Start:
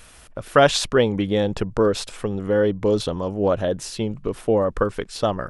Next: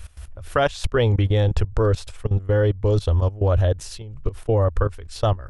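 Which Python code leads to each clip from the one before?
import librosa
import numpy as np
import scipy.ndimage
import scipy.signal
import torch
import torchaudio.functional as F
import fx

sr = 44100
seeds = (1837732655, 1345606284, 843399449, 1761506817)

y = fx.low_shelf_res(x, sr, hz=120.0, db=13.5, q=3.0)
y = fx.level_steps(y, sr, step_db=18)
y = y * librosa.db_to_amplitude(1.0)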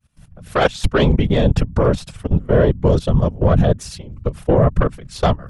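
y = fx.fade_in_head(x, sr, length_s=0.67)
y = fx.cheby_harmonics(y, sr, harmonics=(3, 4), levels_db=(-19, -24), full_scale_db=-7.5)
y = fx.whisperise(y, sr, seeds[0])
y = y * librosa.db_to_amplitude(6.5)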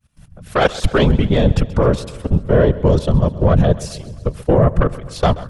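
y = fx.echo_feedback(x, sr, ms=131, feedback_pct=59, wet_db=-18)
y = y * librosa.db_to_amplitude(1.0)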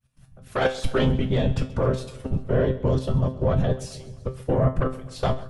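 y = fx.comb_fb(x, sr, f0_hz=130.0, decay_s=0.29, harmonics='all', damping=0.0, mix_pct=80)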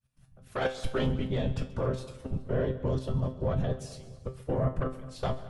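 y = fx.echo_feedback(x, sr, ms=212, feedback_pct=42, wet_db=-19.0)
y = y * librosa.db_to_amplitude(-7.5)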